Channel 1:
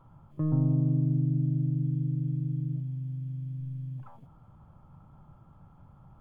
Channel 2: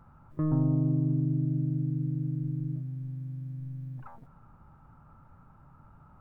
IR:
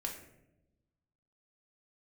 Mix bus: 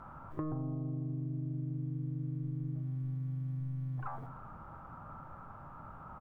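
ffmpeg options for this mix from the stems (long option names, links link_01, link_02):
-filter_complex "[0:a]volume=-7dB[link_01];[1:a]bandreject=frequency=860:width=12,alimiter=level_in=2.5dB:limit=-24dB:level=0:latency=1:release=238,volume=-2.5dB,adelay=0.3,volume=-3dB,asplit=2[link_02][link_03];[link_03]volume=-4.5dB[link_04];[2:a]atrim=start_sample=2205[link_05];[link_04][link_05]afir=irnorm=-1:irlink=0[link_06];[link_01][link_02][link_06]amix=inputs=3:normalize=0,equalizer=frequency=940:width=0.43:gain=12,acompressor=threshold=-35dB:ratio=6"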